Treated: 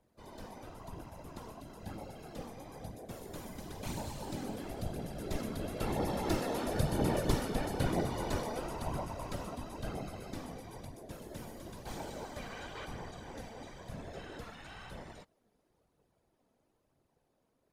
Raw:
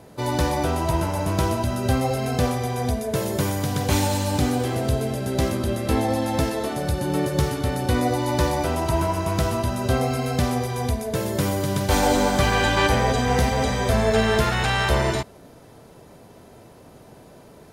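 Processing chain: Doppler pass-by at 6.96, 5 m/s, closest 4 m; whisperiser; phaser 1 Hz, delay 4.7 ms, feedback 31%; gain -8 dB

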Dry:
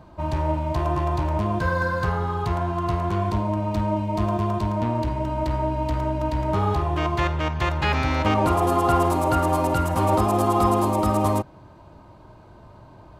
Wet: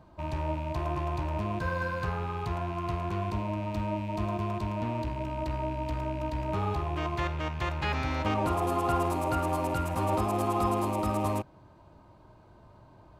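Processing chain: rattling part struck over -29 dBFS, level -29 dBFS; gain -8 dB

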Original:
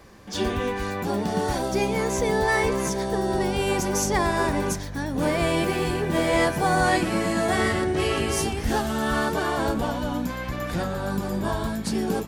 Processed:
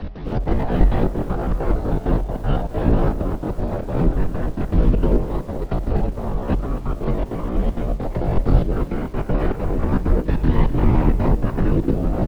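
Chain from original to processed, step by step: delta modulation 16 kbps, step -36.5 dBFS; frequency-shifting echo 0.18 s, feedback 33%, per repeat -77 Hz, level -13 dB; FDN reverb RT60 0.58 s, low-frequency decay 0.85×, high-frequency decay 0.45×, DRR 17 dB; negative-ratio compressor -28 dBFS, ratio -0.5; low shelf 380 Hz +7 dB; doubler 34 ms -12 dB; whisperiser; pitch shift +9 st; tilt -4 dB/oct; step gate "x.xxx.xxxxx.xx." 197 bpm -12 dB; frequency shift -47 Hz; lo-fi delay 0.249 s, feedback 35%, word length 6-bit, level -14 dB; gain -2.5 dB

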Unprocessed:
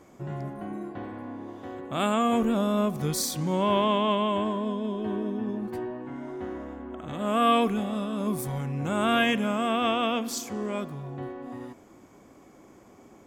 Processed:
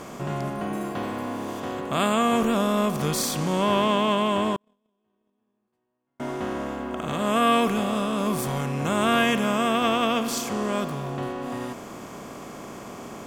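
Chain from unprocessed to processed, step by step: per-bin compression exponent 0.6; 0.73–1.6 high shelf 7000 Hz +9.5 dB; 4.56–6.2 gate -19 dBFS, range -49 dB

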